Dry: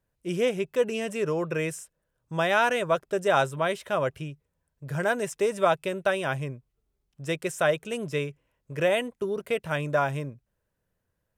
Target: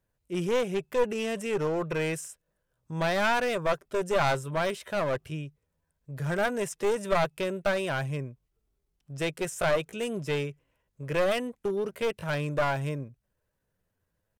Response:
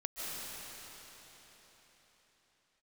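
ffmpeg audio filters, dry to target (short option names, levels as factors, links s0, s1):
-af "atempo=0.79,aeval=exprs='clip(val(0),-1,0.0473)':c=same"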